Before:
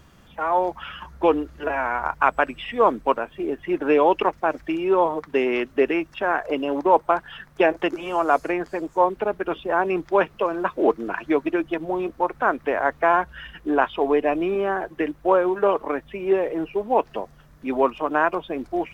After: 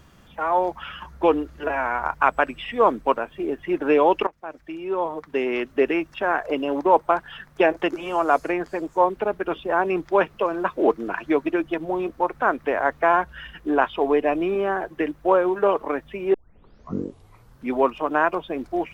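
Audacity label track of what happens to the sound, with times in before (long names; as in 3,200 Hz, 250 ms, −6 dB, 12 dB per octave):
4.270000	5.900000	fade in, from −19 dB
16.340000	16.340000	tape start 1.40 s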